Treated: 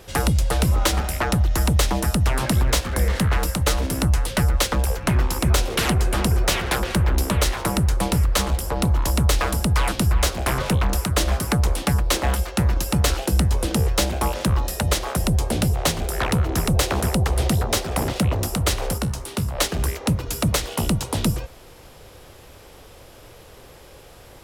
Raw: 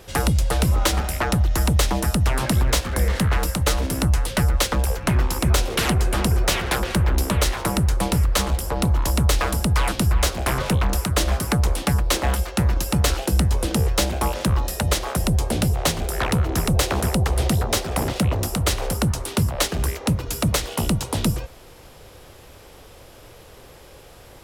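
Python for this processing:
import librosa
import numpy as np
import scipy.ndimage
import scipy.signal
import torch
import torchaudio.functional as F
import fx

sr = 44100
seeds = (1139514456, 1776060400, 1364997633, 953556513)

y = fx.comb_fb(x, sr, f0_hz=65.0, decay_s=0.25, harmonics='all', damping=0.0, mix_pct=60, at=(18.98, 19.55))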